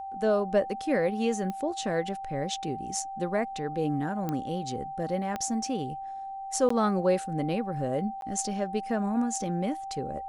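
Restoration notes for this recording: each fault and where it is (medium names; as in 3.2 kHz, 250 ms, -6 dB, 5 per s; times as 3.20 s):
whine 780 Hz -35 dBFS
1.50 s: pop -22 dBFS
4.29 s: pop -18 dBFS
5.36 s: pop -18 dBFS
6.69–6.70 s: dropout 14 ms
8.21–8.22 s: dropout 12 ms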